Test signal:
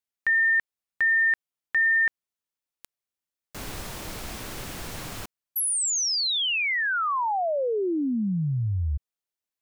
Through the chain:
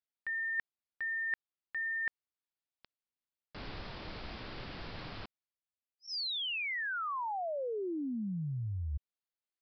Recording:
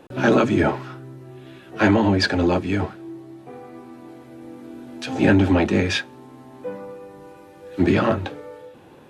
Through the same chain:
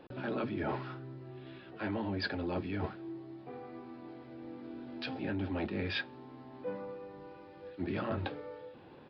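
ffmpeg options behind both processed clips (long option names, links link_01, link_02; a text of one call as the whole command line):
ffmpeg -i in.wav -af "areverse,acompressor=threshold=-29dB:ratio=8:attack=77:release=127:knee=1:detection=rms,areverse,aresample=11025,aresample=44100,volume=-7dB" out.wav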